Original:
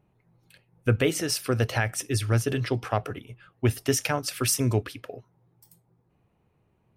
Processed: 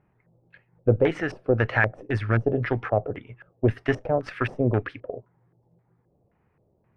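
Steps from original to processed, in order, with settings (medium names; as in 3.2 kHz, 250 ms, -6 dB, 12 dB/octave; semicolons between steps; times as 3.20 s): Chebyshev shaper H 6 -21 dB, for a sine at -9.5 dBFS; LFO low-pass square 1.9 Hz 580–1800 Hz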